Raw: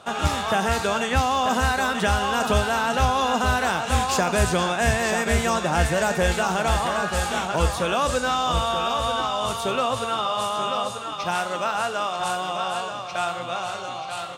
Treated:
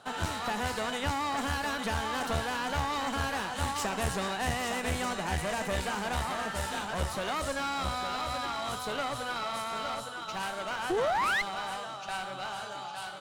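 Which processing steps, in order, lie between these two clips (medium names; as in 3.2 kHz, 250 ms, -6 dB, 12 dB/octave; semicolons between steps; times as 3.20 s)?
painted sound rise, 11.86–12.43 s, 300–2000 Hz -17 dBFS; one-sided clip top -27 dBFS; speed mistake 44.1 kHz file played as 48 kHz; trim -7.5 dB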